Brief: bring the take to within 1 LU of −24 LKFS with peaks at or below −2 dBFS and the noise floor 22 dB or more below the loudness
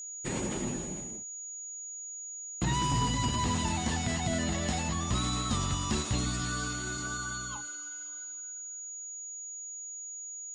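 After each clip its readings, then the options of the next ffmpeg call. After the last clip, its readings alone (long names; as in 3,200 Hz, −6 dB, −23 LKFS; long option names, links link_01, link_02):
interfering tone 6,800 Hz; level of the tone −39 dBFS; integrated loudness −33.0 LKFS; sample peak −20.0 dBFS; target loudness −24.0 LKFS
→ -af "bandreject=frequency=6800:width=30"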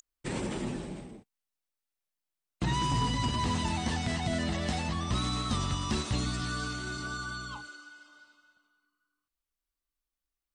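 interfering tone none found; integrated loudness −32.5 LKFS; sample peak −21.0 dBFS; target loudness −24.0 LKFS
→ -af "volume=8.5dB"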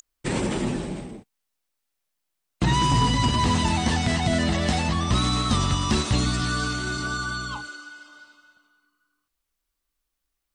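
integrated loudness −24.0 LKFS; sample peak −12.5 dBFS; background noise floor −81 dBFS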